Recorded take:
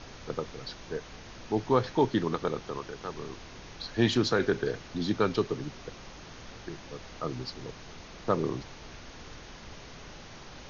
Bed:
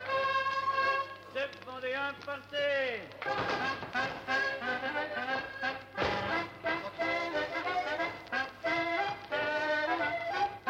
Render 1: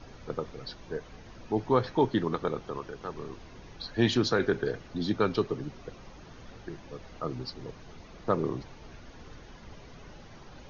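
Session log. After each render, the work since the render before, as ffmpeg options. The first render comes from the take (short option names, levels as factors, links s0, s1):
-af "afftdn=nr=9:nf=-47"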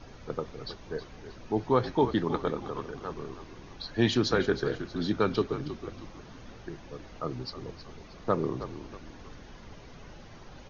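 -filter_complex "[0:a]asplit=5[s0][s1][s2][s3][s4];[s1]adelay=317,afreqshift=-49,volume=0.251[s5];[s2]adelay=634,afreqshift=-98,volume=0.1[s6];[s3]adelay=951,afreqshift=-147,volume=0.0403[s7];[s4]adelay=1268,afreqshift=-196,volume=0.016[s8];[s0][s5][s6][s7][s8]amix=inputs=5:normalize=0"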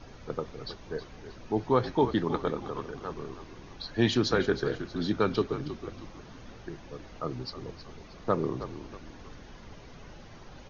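-af anull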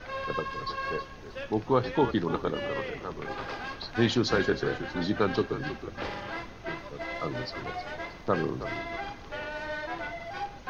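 -filter_complex "[1:a]volume=0.596[s0];[0:a][s0]amix=inputs=2:normalize=0"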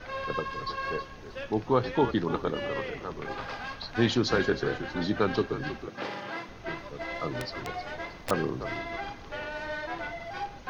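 -filter_complex "[0:a]asettb=1/sr,asplit=3[s0][s1][s2];[s0]atrim=end=3.404[s3];[s1]atrim=start=3.4:end=3.9,asetpts=PTS-STARTPTS,afade=t=in:d=0.004:c=qsin,afade=t=out:st=0.496:d=0.004:c=qsin,equalizer=f=360:t=o:w=0.44:g=-10.5[s4];[s2]atrim=start=3.896[s5];[s3][s4]acrossfade=d=0.004:c1=hsin:c2=qsin[s6];[s6][s5]acrossfade=d=0.004:c1=qsin:c2=hsin,asettb=1/sr,asplit=3[s7][s8][s9];[s7]atrim=end=5.874[s10];[s8]atrim=start=5.87:end=6.49,asetpts=PTS-STARTPTS,afade=t=in:d=0.004:c=qsin,afade=t=out:st=0.616:d=0.004:c=qsin,highpass=f=130:w=0.5412,highpass=f=130:w=1.3066[s11];[s9]atrim=start=6.486[s12];[s10][s11]acrossfade=d=0.004:c1=hsin:c2=qsin[s13];[s13][s12]acrossfade=d=0.004:c1=qsin:c2=hsin,asettb=1/sr,asplit=3[s14][s15][s16];[s14]atrim=end=7.404[s17];[s15]atrim=start=7.4:end=8.31,asetpts=PTS-STARTPTS,afade=t=in:d=0.004:c=qsin,afade=t=out:st=0.906:d=0.004:c=qsin,aeval=exprs='(mod(16.8*val(0)+1,2)-1)/16.8':c=same[s18];[s16]atrim=start=8.306[s19];[s17][s18]acrossfade=d=0.004:c1=hsin:c2=qsin[s20];[s20][s19]acrossfade=d=0.004:c1=qsin:c2=hsin"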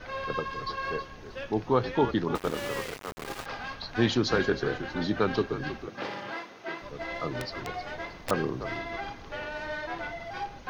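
-filter_complex "[0:a]asettb=1/sr,asplit=3[s0][s1][s2];[s0]atrim=end=2.354[s3];[s1]atrim=start=2.35:end=3.46,asetpts=PTS-STARTPTS,afade=t=in:d=0.004:c=qsin,afade=t=out:st=1.106:d=0.004:c=qsin,aeval=exprs='val(0)*gte(abs(val(0)),0.0211)':c=same[s4];[s2]atrim=start=3.456[s5];[s3][s4]acrossfade=d=0.004:c1=hsin:c2=qsin[s6];[s6][s5]acrossfade=d=0.004:c1=qsin:c2=hsin,asettb=1/sr,asplit=3[s7][s8][s9];[s7]atrim=end=6.344[s10];[s8]atrim=start=6.34:end=6.82,asetpts=PTS-STARTPTS,afade=t=in:d=0.004:c=qsin,afade=t=out:st=0.476:d=0.004:c=qsin,highpass=280[s11];[s9]atrim=start=6.816[s12];[s10][s11]acrossfade=d=0.004:c1=hsin:c2=qsin[s13];[s13][s12]acrossfade=d=0.004:c1=qsin:c2=hsin"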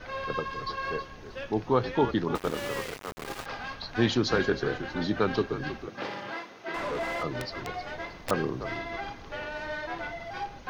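-filter_complex "[0:a]asettb=1/sr,asplit=3[s0][s1][s2];[s0]atrim=end=6.744[s3];[s1]atrim=start=6.74:end=7.23,asetpts=PTS-STARTPTS,afade=t=in:d=0.004:c=qsin,afade=t=out:st=0.486:d=0.004:c=qsin,asplit=2[s4][s5];[s5]highpass=f=720:p=1,volume=50.1,asoftclip=type=tanh:threshold=0.075[s6];[s4][s6]amix=inputs=2:normalize=0,lowpass=f=1100:p=1,volume=0.501[s7];[s2]atrim=start=7.226[s8];[s3][s7]acrossfade=d=0.004:c1=hsin:c2=qsin[s9];[s9][s8]acrossfade=d=0.004:c1=qsin:c2=hsin"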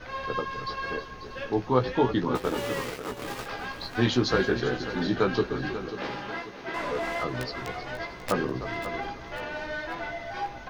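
-filter_complex "[0:a]asplit=2[s0][s1];[s1]adelay=16,volume=0.562[s2];[s0][s2]amix=inputs=2:normalize=0,aecho=1:1:540|1080|1620|2160:0.251|0.108|0.0464|0.02"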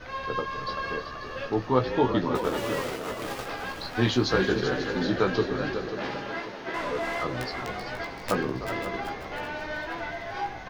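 -filter_complex "[0:a]asplit=2[s0][s1];[s1]adelay=27,volume=0.2[s2];[s0][s2]amix=inputs=2:normalize=0,asplit=6[s3][s4][s5][s6][s7][s8];[s4]adelay=383,afreqshift=78,volume=0.335[s9];[s5]adelay=766,afreqshift=156,volume=0.16[s10];[s6]adelay=1149,afreqshift=234,volume=0.0767[s11];[s7]adelay=1532,afreqshift=312,volume=0.0372[s12];[s8]adelay=1915,afreqshift=390,volume=0.0178[s13];[s3][s9][s10][s11][s12][s13]amix=inputs=6:normalize=0"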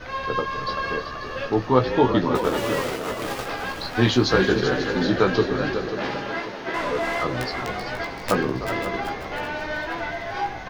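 -af "volume=1.78"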